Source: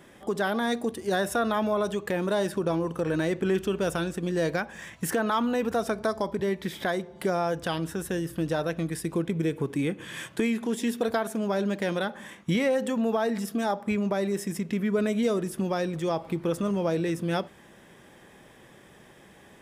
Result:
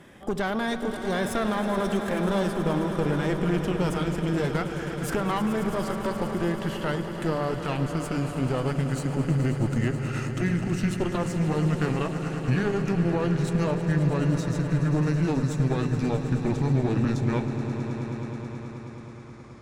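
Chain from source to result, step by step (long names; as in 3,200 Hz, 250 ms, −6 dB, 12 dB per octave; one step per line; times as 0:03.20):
pitch glide at a constant tempo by −7.5 semitones starting unshifted
low-shelf EQ 350 Hz −5 dB
in parallel at −1 dB: brickwall limiter −26.5 dBFS, peak gain reduction 10 dB
on the sum: tube saturation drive 22 dB, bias 0.75
bass and treble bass +8 dB, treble −4 dB
on a send: echo that builds up and dies away 107 ms, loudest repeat 5, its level −13 dB
on the sum: level +1 dB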